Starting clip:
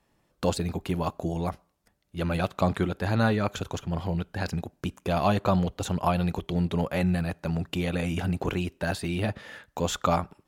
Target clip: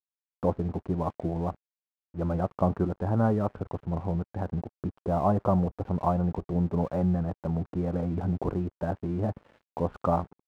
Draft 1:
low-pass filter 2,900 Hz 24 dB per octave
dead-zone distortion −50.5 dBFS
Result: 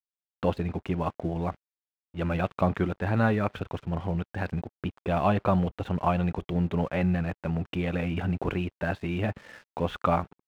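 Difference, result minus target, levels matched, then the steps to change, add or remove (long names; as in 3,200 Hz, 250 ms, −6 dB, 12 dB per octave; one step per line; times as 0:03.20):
4,000 Hz band +15.0 dB
change: low-pass filter 1,100 Hz 24 dB per octave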